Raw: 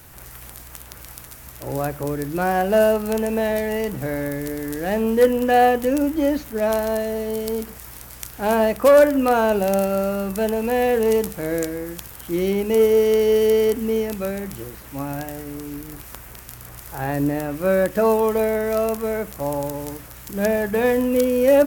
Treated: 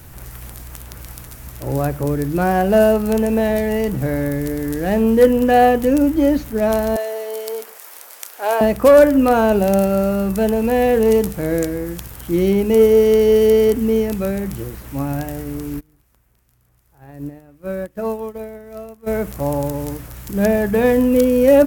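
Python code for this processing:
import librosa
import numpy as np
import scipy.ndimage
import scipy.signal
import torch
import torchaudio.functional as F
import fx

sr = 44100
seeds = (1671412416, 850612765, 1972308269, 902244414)

y = fx.highpass(x, sr, hz=480.0, slope=24, at=(6.96, 8.61))
y = fx.upward_expand(y, sr, threshold_db=-27.0, expansion=2.5, at=(15.79, 19.06), fade=0.02)
y = fx.low_shelf(y, sr, hz=320.0, db=8.5)
y = F.gain(torch.from_numpy(y), 1.0).numpy()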